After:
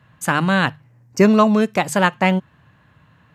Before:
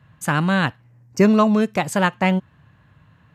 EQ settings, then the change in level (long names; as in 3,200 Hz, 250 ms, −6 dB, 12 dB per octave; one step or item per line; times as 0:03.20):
low-shelf EQ 150 Hz −5.5 dB
mains-hum notches 50/100/150 Hz
+3.0 dB